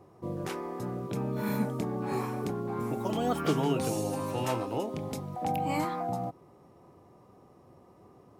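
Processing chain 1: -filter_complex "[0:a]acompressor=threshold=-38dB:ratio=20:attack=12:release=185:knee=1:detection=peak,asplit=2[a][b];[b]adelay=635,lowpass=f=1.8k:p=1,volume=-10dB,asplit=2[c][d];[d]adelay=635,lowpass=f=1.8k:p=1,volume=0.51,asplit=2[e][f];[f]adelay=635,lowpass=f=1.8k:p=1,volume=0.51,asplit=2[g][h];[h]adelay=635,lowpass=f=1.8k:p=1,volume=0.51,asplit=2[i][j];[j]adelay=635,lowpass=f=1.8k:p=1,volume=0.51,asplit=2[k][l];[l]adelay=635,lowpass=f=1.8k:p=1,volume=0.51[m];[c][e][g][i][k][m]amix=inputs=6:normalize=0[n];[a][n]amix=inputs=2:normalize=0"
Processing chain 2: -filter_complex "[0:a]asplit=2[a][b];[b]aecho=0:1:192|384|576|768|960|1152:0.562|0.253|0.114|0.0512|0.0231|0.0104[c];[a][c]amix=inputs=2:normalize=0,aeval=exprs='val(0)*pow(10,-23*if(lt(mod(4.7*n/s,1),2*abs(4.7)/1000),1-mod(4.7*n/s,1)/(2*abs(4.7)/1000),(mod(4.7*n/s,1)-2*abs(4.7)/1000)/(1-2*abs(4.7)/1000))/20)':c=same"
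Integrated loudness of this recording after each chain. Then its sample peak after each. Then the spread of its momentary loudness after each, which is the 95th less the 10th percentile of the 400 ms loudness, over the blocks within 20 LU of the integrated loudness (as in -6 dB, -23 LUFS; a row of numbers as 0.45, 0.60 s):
-42.0, -38.5 LUFS; -26.0, -18.5 dBFS; 13, 8 LU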